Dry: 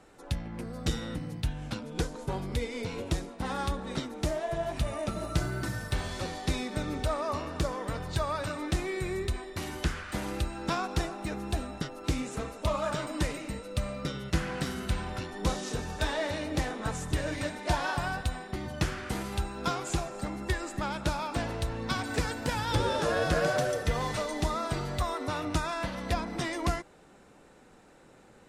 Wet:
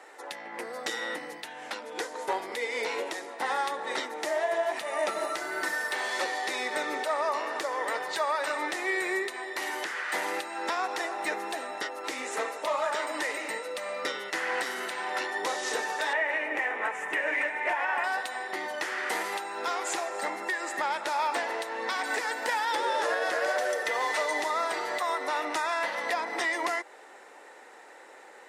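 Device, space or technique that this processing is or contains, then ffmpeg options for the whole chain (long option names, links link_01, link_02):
laptop speaker: -filter_complex "[0:a]asettb=1/sr,asplit=3[link_01][link_02][link_03];[link_01]atrim=end=16.134[link_04];[link_02]atrim=start=16.13:end=18.04,asetpts=PTS-STARTPTS,afade=type=in:duration=0.004:curve=qsin,afade=type=out:start_time=1.906:duration=0.004:curve=qsin,highshelf=frequency=3200:width_type=q:width=3:gain=-9[link_05];[link_03]atrim=start=18.036[link_06];[link_04][link_05]acrossfade=duration=0.004:curve1=hsin:curve2=qsin[link_07];[link_07][link_06]acrossfade=duration=0.004:curve1=qsin:curve2=hsin,highpass=frequency=390:width=0.5412,highpass=frequency=390:width=1.3066,equalizer=frequency=880:width_type=o:width=0.38:gain=6,equalizer=frequency=1900:width_type=o:width=0.33:gain=11,alimiter=level_in=1dB:limit=-24dB:level=0:latency=1:release=260,volume=-1dB,volume=6dB"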